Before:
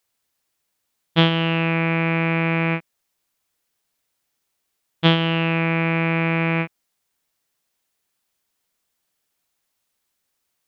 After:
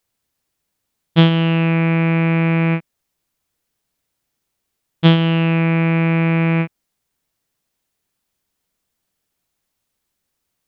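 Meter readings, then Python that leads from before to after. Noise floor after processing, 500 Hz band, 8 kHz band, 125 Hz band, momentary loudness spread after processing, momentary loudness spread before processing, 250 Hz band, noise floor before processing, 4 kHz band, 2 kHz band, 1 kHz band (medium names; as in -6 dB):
-76 dBFS, +2.5 dB, no reading, +6.5 dB, 6 LU, 6 LU, +6.0 dB, -76 dBFS, -1.0 dB, -0.5 dB, 0.0 dB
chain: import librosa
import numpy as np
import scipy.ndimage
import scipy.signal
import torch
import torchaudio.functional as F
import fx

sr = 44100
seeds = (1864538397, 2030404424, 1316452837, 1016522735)

y = fx.low_shelf(x, sr, hz=350.0, db=9.5)
y = F.gain(torch.from_numpy(y), -1.0).numpy()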